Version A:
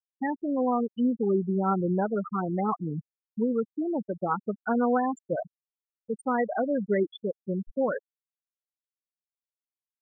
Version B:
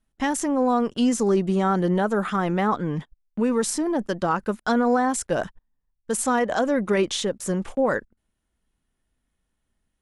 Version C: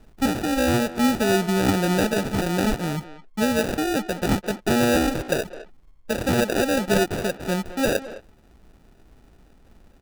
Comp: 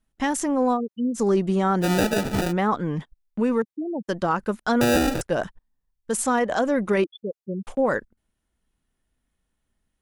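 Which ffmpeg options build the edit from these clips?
-filter_complex "[0:a]asplit=3[a][b][c];[2:a]asplit=2[d][e];[1:a]asplit=6[f][g][h][i][j][k];[f]atrim=end=0.78[l];[a]atrim=start=0.72:end=1.2[m];[g]atrim=start=1.14:end=1.85[n];[d]atrim=start=1.81:end=2.53[o];[h]atrim=start=2.49:end=3.622[p];[b]atrim=start=3.618:end=4.082[q];[i]atrim=start=4.078:end=4.812[r];[e]atrim=start=4.808:end=5.212[s];[j]atrim=start=5.208:end=7.042[t];[c]atrim=start=7.038:end=7.672[u];[k]atrim=start=7.668[v];[l][m]acrossfade=d=0.06:c1=tri:c2=tri[w];[w][n]acrossfade=d=0.06:c1=tri:c2=tri[x];[x][o]acrossfade=d=0.04:c1=tri:c2=tri[y];[y][p]acrossfade=d=0.04:c1=tri:c2=tri[z];[z][q]acrossfade=d=0.004:c1=hsin:c2=hsin[aa];[aa][r]acrossfade=d=0.004:c1=hsin:c2=hsin[ab];[ab][s]acrossfade=d=0.004:c1=hsin:c2=hsin[ac];[ac][t]acrossfade=d=0.004:c1=hsin:c2=hsin[ad];[ad][u]acrossfade=d=0.004:c1=hsin:c2=hsin[ae];[ae][v]acrossfade=d=0.004:c1=hsin:c2=hsin"

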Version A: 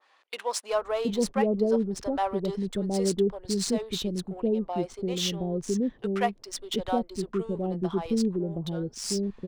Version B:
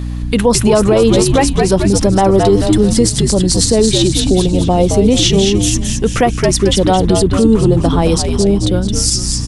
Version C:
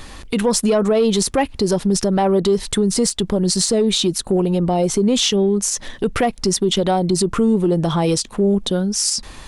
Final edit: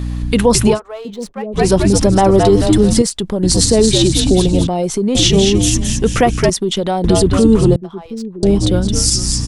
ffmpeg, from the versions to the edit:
-filter_complex "[0:a]asplit=2[a][b];[2:a]asplit=3[c][d][e];[1:a]asplit=6[f][g][h][i][j][k];[f]atrim=end=0.8[l];[a]atrim=start=0.7:end=1.62[m];[g]atrim=start=1.52:end=3.022[n];[c]atrim=start=3.018:end=3.432[o];[h]atrim=start=3.428:end=4.672[p];[d]atrim=start=4.668:end=5.152[q];[i]atrim=start=5.148:end=6.502[r];[e]atrim=start=6.498:end=7.042[s];[j]atrim=start=7.038:end=7.762[t];[b]atrim=start=7.758:end=8.432[u];[k]atrim=start=8.428[v];[l][m]acrossfade=d=0.1:c1=tri:c2=tri[w];[w][n]acrossfade=d=0.1:c1=tri:c2=tri[x];[x][o]acrossfade=d=0.004:c1=hsin:c2=hsin[y];[y][p]acrossfade=d=0.004:c1=hsin:c2=hsin[z];[z][q]acrossfade=d=0.004:c1=hsin:c2=hsin[aa];[aa][r]acrossfade=d=0.004:c1=hsin:c2=hsin[ab];[ab][s]acrossfade=d=0.004:c1=hsin:c2=hsin[ac];[ac][t]acrossfade=d=0.004:c1=hsin:c2=hsin[ad];[ad][u]acrossfade=d=0.004:c1=hsin:c2=hsin[ae];[ae][v]acrossfade=d=0.004:c1=hsin:c2=hsin"

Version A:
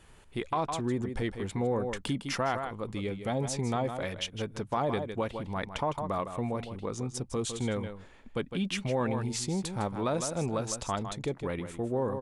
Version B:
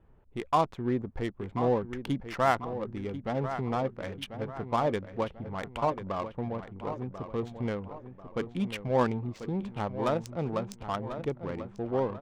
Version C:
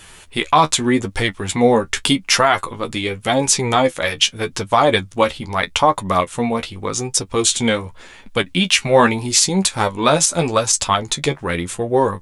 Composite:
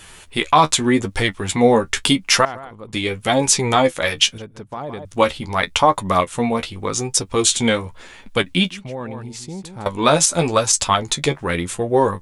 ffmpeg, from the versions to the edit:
-filter_complex "[0:a]asplit=3[a][b][c];[2:a]asplit=4[d][e][f][g];[d]atrim=end=2.452[h];[a]atrim=start=2.448:end=2.932[i];[e]atrim=start=2.928:end=4.382[j];[b]atrim=start=4.378:end=5.052[k];[f]atrim=start=5.048:end=8.702[l];[c]atrim=start=8.698:end=9.862[m];[g]atrim=start=9.858[n];[h][i]acrossfade=d=0.004:c1=hsin:c2=hsin[o];[o][j]acrossfade=d=0.004:c1=hsin:c2=hsin[p];[p][k]acrossfade=d=0.004:c1=hsin:c2=hsin[q];[q][l]acrossfade=d=0.004:c1=hsin:c2=hsin[r];[r][m]acrossfade=d=0.004:c1=hsin:c2=hsin[s];[s][n]acrossfade=d=0.004:c1=hsin:c2=hsin"

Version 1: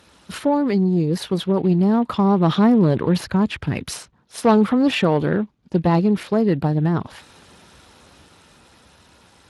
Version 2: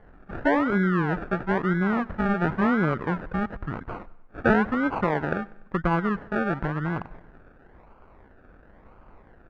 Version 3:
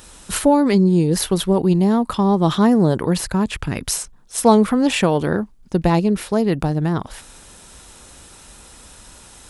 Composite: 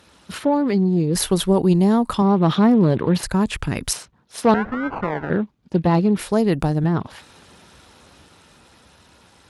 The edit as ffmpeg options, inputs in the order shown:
-filter_complex "[2:a]asplit=3[a][b][c];[0:a]asplit=5[d][e][f][g][h];[d]atrim=end=1.152[i];[a]atrim=start=1.148:end=2.222[j];[e]atrim=start=2.218:end=3.232[k];[b]atrim=start=3.228:end=3.932[l];[f]atrim=start=3.928:end=4.542[m];[1:a]atrim=start=4.538:end=5.302[n];[g]atrim=start=5.298:end=6.192[o];[c]atrim=start=6.188:end=6.842[p];[h]atrim=start=6.838[q];[i][j]acrossfade=d=0.004:c1=hsin:c2=hsin[r];[r][k]acrossfade=d=0.004:c1=hsin:c2=hsin[s];[s][l]acrossfade=d=0.004:c1=hsin:c2=hsin[t];[t][m]acrossfade=d=0.004:c1=hsin:c2=hsin[u];[u][n]acrossfade=d=0.004:c1=hsin:c2=hsin[v];[v][o]acrossfade=d=0.004:c1=hsin:c2=hsin[w];[w][p]acrossfade=d=0.004:c1=hsin:c2=hsin[x];[x][q]acrossfade=d=0.004:c1=hsin:c2=hsin"

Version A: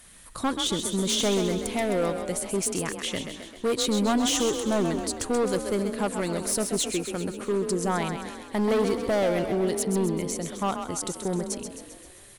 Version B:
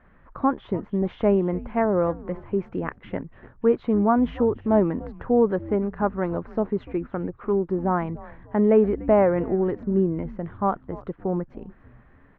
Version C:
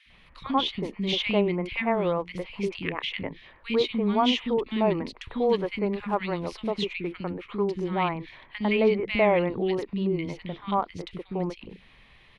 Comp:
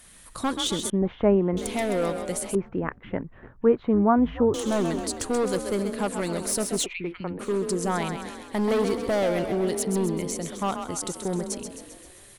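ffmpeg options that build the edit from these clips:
-filter_complex "[1:a]asplit=2[a][b];[0:a]asplit=4[c][d][e][f];[c]atrim=end=0.902[g];[a]atrim=start=0.898:end=1.572[h];[d]atrim=start=1.568:end=2.552[i];[b]atrim=start=2.548:end=4.542[j];[e]atrim=start=4.538:end=6.862[k];[2:a]atrim=start=6.858:end=7.392[l];[f]atrim=start=7.388[m];[g][h]acrossfade=d=0.004:c1=hsin:c2=hsin[n];[n][i]acrossfade=d=0.004:c1=hsin:c2=hsin[o];[o][j]acrossfade=d=0.004:c1=hsin:c2=hsin[p];[p][k]acrossfade=d=0.004:c1=hsin:c2=hsin[q];[q][l]acrossfade=d=0.004:c1=hsin:c2=hsin[r];[r][m]acrossfade=d=0.004:c1=hsin:c2=hsin"

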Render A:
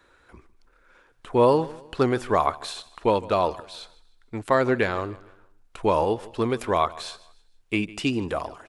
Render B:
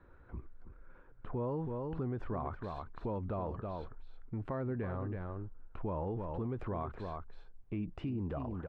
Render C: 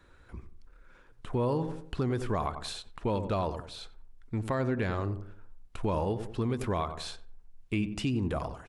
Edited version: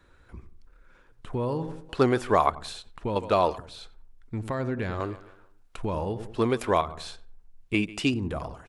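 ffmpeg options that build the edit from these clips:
-filter_complex "[0:a]asplit=5[a][b][c][d][e];[2:a]asplit=6[f][g][h][i][j][k];[f]atrim=end=1.892[l];[a]atrim=start=1.888:end=2.502[m];[g]atrim=start=2.498:end=3.162[n];[b]atrim=start=3.158:end=3.582[o];[h]atrim=start=3.578:end=5.002[p];[c]atrim=start=4.998:end=5.772[q];[i]atrim=start=5.768:end=6.372[r];[d]atrim=start=6.368:end=6.812[s];[j]atrim=start=6.808:end=7.742[t];[e]atrim=start=7.738:end=8.142[u];[k]atrim=start=8.138[v];[l][m]acrossfade=d=0.004:c1=hsin:c2=hsin[w];[w][n]acrossfade=d=0.004:c1=hsin:c2=hsin[x];[x][o]acrossfade=d=0.004:c1=hsin:c2=hsin[y];[y][p]acrossfade=d=0.004:c1=hsin:c2=hsin[z];[z][q]acrossfade=d=0.004:c1=hsin:c2=hsin[aa];[aa][r]acrossfade=d=0.004:c1=hsin:c2=hsin[ab];[ab][s]acrossfade=d=0.004:c1=hsin:c2=hsin[ac];[ac][t]acrossfade=d=0.004:c1=hsin:c2=hsin[ad];[ad][u]acrossfade=d=0.004:c1=hsin:c2=hsin[ae];[ae][v]acrossfade=d=0.004:c1=hsin:c2=hsin"

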